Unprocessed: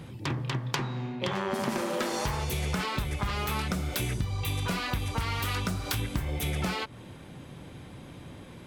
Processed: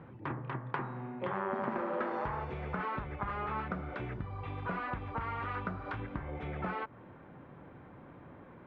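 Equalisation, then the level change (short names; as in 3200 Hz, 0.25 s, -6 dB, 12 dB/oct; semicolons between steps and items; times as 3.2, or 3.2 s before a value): ladder low-pass 1900 Hz, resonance 25%; low shelf 180 Hz -9 dB; +2.5 dB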